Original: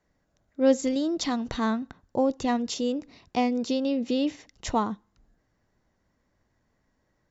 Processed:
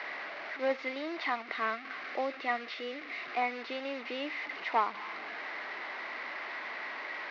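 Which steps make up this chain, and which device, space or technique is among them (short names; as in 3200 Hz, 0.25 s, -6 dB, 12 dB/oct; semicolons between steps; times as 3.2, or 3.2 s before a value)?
digital answering machine (BPF 390–3400 Hz; delta modulation 32 kbps, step -35.5 dBFS; speaker cabinet 460–4000 Hz, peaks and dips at 510 Hz -7 dB, 1200 Hz +3 dB, 2100 Hz +10 dB, 3300 Hz -5 dB); 1.43–3.42 bell 920 Hz -14.5 dB 0.21 oct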